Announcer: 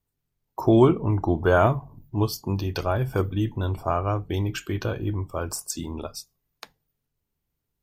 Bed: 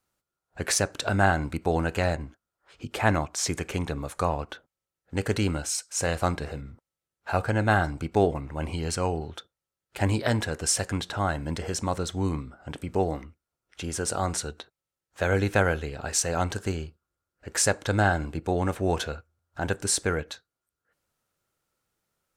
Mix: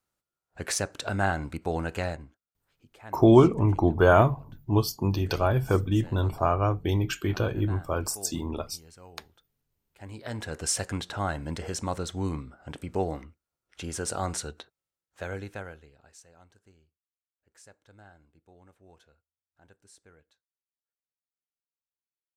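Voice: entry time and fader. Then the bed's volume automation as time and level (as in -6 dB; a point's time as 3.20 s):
2.55 s, +0.5 dB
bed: 2.00 s -4.5 dB
2.89 s -23 dB
9.93 s -23 dB
10.57 s -3 dB
14.86 s -3 dB
16.37 s -31 dB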